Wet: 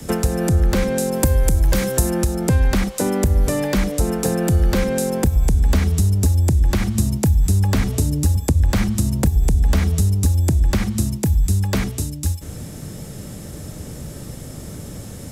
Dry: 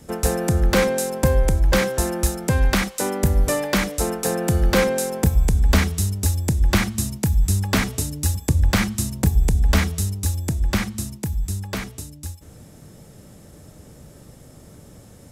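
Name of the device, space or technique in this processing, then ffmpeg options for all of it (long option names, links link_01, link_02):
mastering chain: -filter_complex "[0:a]equalizer=frequency=810:width_type=o:width=2.3:gain=-4,acrossover=split=100|280|1000[link_01][link_02][link_03][link_04];[link_01]acompressor=threshold=-22dB:ratio=4[link_05];[link_02]acompressor=threshold=-33dB:ratio=4[link_06];[link_03]acompressor=threshold=-36dB:ratio=4[link_07];[link_04]acompressor=threshold=-40dB:ratio=4[link_08];[link_05][link_06][link_07][link_08]amix=inputs=4:normalize=0,acompressor=threshold=-26dB:ratio=2.5,alimiter=level_in=18.5dB:limit=-1dB:release=50:level=0:latency=1,asettb=1/sr,asplit=3[link_09][link_10][link_11];[link_09]atrim=end=1.144[link_12];[link_10]atrim=start=1.14:end=2.11,asetpts=PTS-STARTPTS,afade=type=in:duration=0.004:curve=qsin,afade=type=out:start_time=0.966:duration=0.004:curve=qsin,highshelf=frequency=7000:gain=11[link_13];[link_11]atrim=start=2.106[link_14];[link_12][link_13]acrossfade=duration=0.004:curve1=hsin:curve2=qsin[link_15];[link_15][link_14]acrossfade=duration=0.004:curve1=qsin:curve2=hsin,volume=-6dB"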